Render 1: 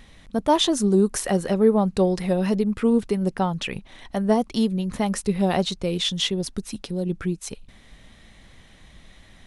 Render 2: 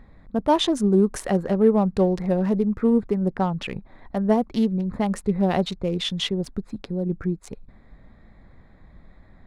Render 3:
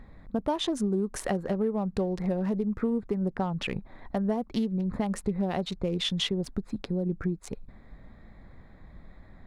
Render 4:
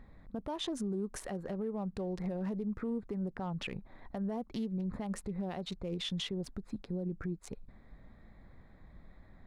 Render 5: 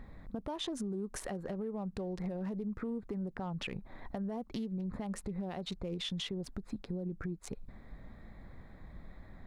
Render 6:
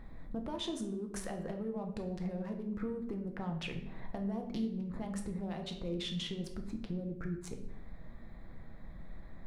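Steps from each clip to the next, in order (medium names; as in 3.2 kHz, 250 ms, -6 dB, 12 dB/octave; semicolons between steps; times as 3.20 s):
local Wiener filter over 15 samples; tone controls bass +1 dB, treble -6 dB
compression 6:1, threshold -25 dBFS, peak gain reduction 12.5 dB
peak limiter -23 dBFS, peak gain reduction 8 dB; trim -6 dB
compression 2.5:1, threshold -43 dBFS, peak gain reduction 7.5 dB; trim +5 dB
simulated room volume 210 m³, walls mixed, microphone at 0.66 m; trim -2 dB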